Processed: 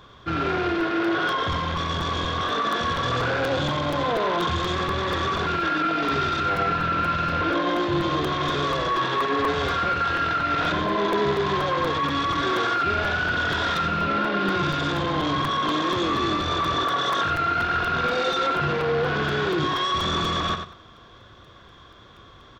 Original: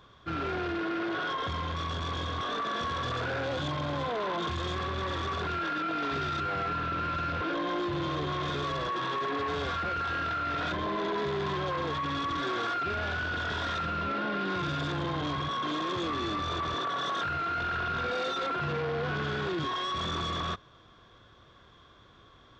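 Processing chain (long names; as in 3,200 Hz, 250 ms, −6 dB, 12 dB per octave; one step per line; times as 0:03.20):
repeating echo 92 ms, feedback 21%, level −7.5 dB
regular buffer underruns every 0.24 s, samples 256, repeat, from 0:00.80
level +7.5 dB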